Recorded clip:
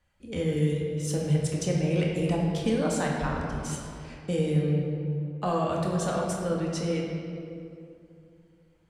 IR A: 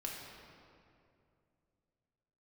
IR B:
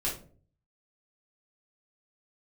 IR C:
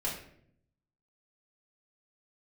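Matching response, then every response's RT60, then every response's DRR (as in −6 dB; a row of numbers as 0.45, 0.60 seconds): A; 2.5, 0.45, 0.65 seconds; −2.5, −5.5, −6.0 decibels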